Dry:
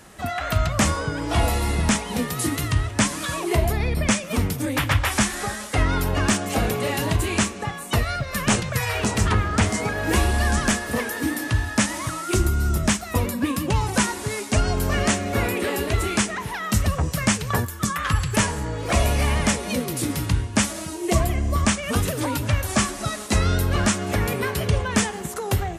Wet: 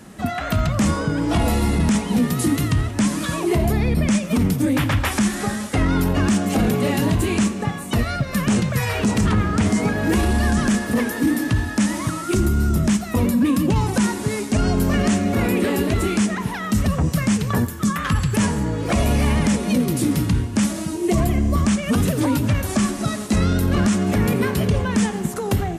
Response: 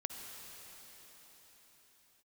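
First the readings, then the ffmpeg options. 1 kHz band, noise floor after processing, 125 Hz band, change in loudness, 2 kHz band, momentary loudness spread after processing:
-0.5 dB, -29 dBFS, +3.0 dB, +3.0 dB, -1.5 dB, 4 LU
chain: -filter_complex "[0:a]equalizer=f=210:w=0.96:g=12,alimiter=limit=0.299:level=0:latency=1:release=10,asplit=2[s0][s1];[1:a]atrim=start_sample=2205,adelay=86[s2];[s1][s2]afir=irnorm=-1:irlink=0,volume=0.141[s3];[s0][s3]amix=inputs=2:normalize=0"

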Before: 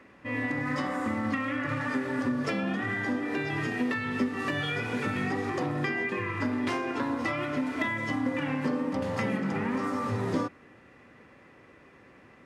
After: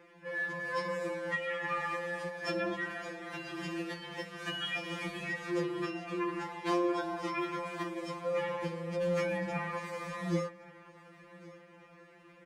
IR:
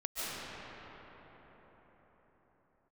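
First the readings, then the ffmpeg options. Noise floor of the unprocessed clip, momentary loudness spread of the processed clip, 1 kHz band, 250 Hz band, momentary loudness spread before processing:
-55 dBFS, 10 LU, -4.0 dB, -9.0 dB, 1 LU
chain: -af "aecho=1:1:1121|2242|3363:0.0891|0.0374|0.0157,afftfilt=real='re*2.83*eq(mod(b,8),0)':imag='im*2.83*eq(mod(b,8),0)':win_size=2048:overlap=0.75"

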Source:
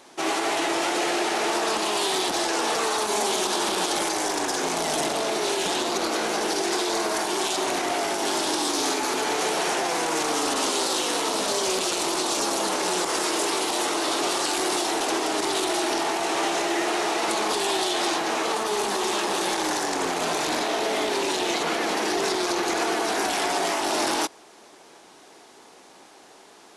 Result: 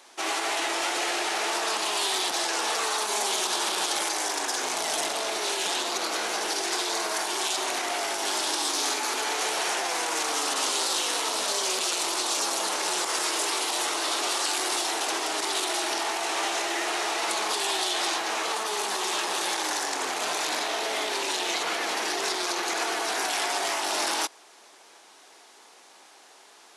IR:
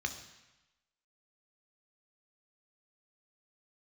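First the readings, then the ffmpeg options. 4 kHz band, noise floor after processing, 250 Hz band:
-0.5 dB, -53 dBFS, -10.0 dB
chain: -af "highpass=f=980:p=1"

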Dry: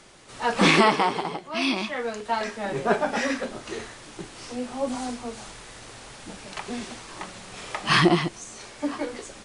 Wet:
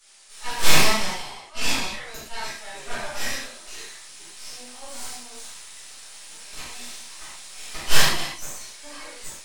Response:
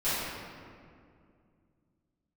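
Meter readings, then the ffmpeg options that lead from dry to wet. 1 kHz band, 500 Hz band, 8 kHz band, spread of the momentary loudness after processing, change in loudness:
-6.0 dB, -8.5 dB, +9.5 dB, 20 LU, -1.0 dB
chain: -filter_complex "[0:a]aderivative,aeval=exprs='0.2*(cos(1*acos(clip(val(0)/0.2,-1,1)))-cos(1*PI/2))+0.0891*(cos(6*acos(clip(val(0)/0.2,-1,1)))-cos(6*PI/2))':c=same[s0];[1:a]atrim=start_sample=2205,atrim=end_sample=6174[s1];[s0][s1]afir=irnorm=-1:irlink=0,volume=0.891"

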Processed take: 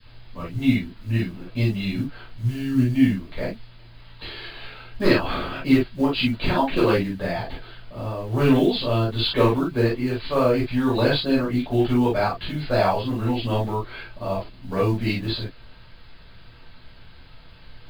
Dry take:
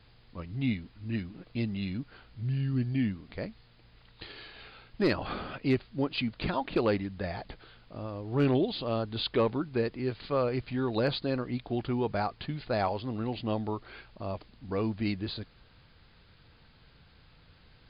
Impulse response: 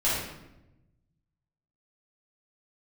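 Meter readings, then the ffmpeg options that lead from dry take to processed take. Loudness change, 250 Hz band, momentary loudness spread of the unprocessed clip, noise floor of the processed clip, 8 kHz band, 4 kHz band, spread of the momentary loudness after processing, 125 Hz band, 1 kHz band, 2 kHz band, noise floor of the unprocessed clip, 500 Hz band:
+9.0 dB, +10.0 dB, 16 LU, -46 dBFS, no reading, +10.0 dB, 14 LU, +9.0 dB, +9.0 dB, +10.0 dB, -60 dBFS, +8.0 dB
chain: -filter_complex "[0:a]adynamicequalizer=threshold=0.00562:dfrequency=730:dqfactor=1.8:tfrequency=730:tqfactor=1.8:attack=5:release=100:ratio=0.375:range=2.5:mode=cutabove:tftype=bell,acrusher=bits=8:mode=log:mix=0:aa=0.000001[s0];[1:a]atrim=start_sample=2205,atrim=end_sample=3087[s1];[s0][s1]afir=irnorm=-1:irlink=0"

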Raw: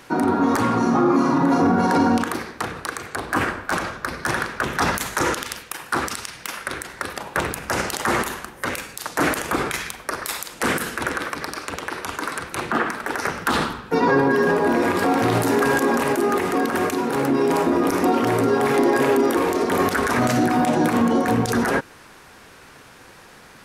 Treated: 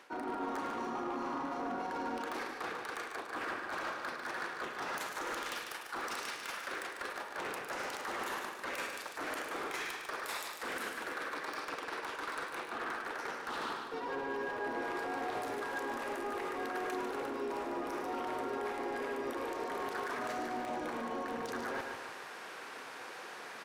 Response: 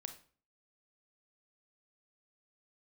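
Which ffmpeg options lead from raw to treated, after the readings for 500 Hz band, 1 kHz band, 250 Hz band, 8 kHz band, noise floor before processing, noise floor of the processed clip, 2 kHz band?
-18.0 dB, -15.0 dB, -22.5 dB, -18.0 dB, -46 dBFS, -47 dBFS, -14.0 dB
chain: -filter_complex "[0:a]highpass=400,highshelf=f=5700:g=-9.5,areverse,acompressor=threshold=0.0158:ratio=10,areverse,asoftclip=type=hard:threshold=0.0188,aecho=1:1:147|294|441|588|735|882:0.447|0.21|0.0987|0.0464|0.0218|0.0102,asplit=2[s0][s1];[1:a]atrim=start_sample=2205,adelay=106[s2];[s1][s2]afir=irnorm=-1:irlink=0,volume=0.531[s3];[s0][s3]amix=inputs=2:normalize=0"

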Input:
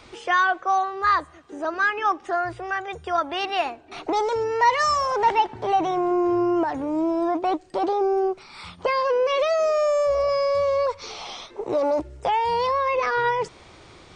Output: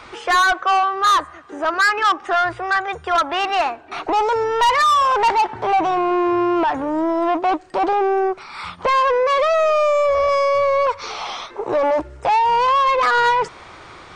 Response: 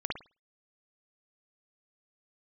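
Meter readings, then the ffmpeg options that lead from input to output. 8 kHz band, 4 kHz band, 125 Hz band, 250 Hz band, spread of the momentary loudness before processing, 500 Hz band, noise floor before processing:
+6.5 dB, +7.0 dB, +1.0 dB, +2.5 dB, 9 LU, +3.5 dB, -49 dBFS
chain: -af "equalizer=f=1300:w=0.73:g=10.5,asoftclip=type=tanh:threshold=0.188,volume=1.33"

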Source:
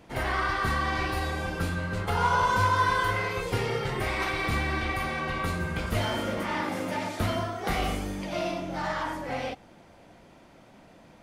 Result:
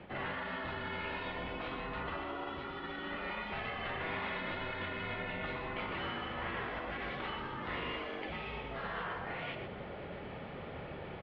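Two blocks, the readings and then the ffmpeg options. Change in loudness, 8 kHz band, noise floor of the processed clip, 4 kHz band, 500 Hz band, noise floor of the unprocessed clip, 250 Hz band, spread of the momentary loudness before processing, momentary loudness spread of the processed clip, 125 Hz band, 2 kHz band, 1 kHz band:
-11.0 dB, under -35 dB, -45 dBFS, -8.5 dB, -9.5 dB, -54 dBFS, -10.5 dB, 8 LU, 7 LU, -15.0 dB, -9.0 dB, -12.5 dB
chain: -filter_complex "[0:a]highpass=f=210:t=q:w=0.5412,highpass=f=210:t=q:w=1.307,lowpass=f=3500:t=q:w=0.5176,lowpass=f=3500:t=q:w=0.7071,lowpass=f=3500:t=q:w=1.932,afreqshift=-130,alimiter=limit=0.0708:level=0:latency=1:release=65,areverse,acompressor=threshold=0.00708:ratio=8,areverse,asplit=2[s0][s1];[s1]adelay=122.4,volume=0.447,highshelf=f=4000:g=-2.76[s2];[s0][s2]amix=inputs=2:normalize=0,afftfilt=real='re*lt(hypot(re,im),0.0224)':imag='im*lt(hypot(re,im),0.0224)':win_size=1024:overlap=0.75,volume=3.16" -ar 24000 -c:a libmp3lame -b:a 40k

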